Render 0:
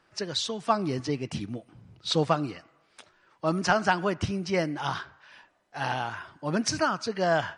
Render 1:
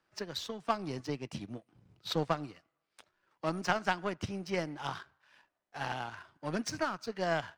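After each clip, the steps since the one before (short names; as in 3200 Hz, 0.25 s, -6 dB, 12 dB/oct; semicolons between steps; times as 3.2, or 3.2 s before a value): power-law curve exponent 1.4; three-band squash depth 40%; gain -2.5 dB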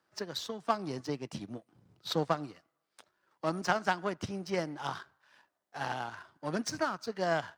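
HPF 130 Hz 6 dB/oct; bell 2500 Hz -5 dB 0.75 oct; gain +2 dB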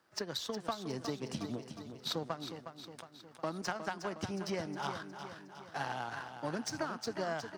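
compressor 6:1, threshold -39 dBFS, peak gain reduction 16 dB; on a send: feedback echo 0.362 s, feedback 55%, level -9 dB; on the sum: gain +4.5 dB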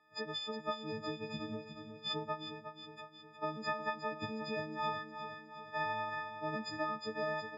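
frequency quantiser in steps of 6 st; Bessel low-pass 2600 Hz, order 4; gain -3 dB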